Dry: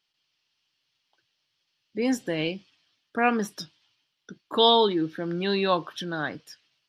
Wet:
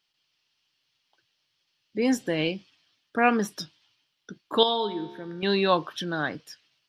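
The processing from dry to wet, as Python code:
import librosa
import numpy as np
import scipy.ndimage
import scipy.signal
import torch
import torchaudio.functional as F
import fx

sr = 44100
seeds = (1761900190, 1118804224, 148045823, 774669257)

y = fx.comb_fb(x, sr, f0_hz=70.0, decay_s=1.2, harmonics='all', damping=0.0, mix_pct=70, at=(4.63, 5.43))
y = F.gain(torch.from_numpy(y), 1.5).numpy()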